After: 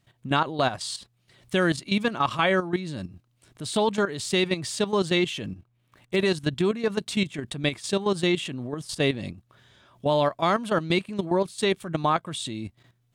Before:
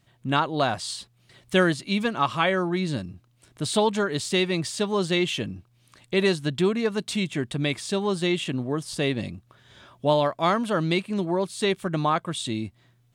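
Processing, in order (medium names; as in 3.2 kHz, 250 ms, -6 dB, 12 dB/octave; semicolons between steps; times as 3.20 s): 5.44–6.16 s: median filter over 9 samples; level held to a coarse grid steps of 12 dB; trim +3 dB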